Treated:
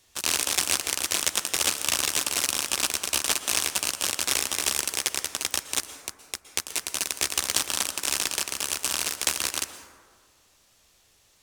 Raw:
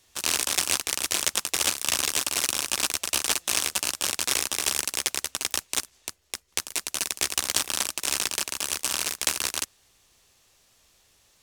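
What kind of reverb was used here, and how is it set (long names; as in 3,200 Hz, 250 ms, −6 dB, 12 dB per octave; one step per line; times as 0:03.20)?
dense smooth reverb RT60 1.8 s, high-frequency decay 0.35×, pre-delay 105 ms, DRR 11 dB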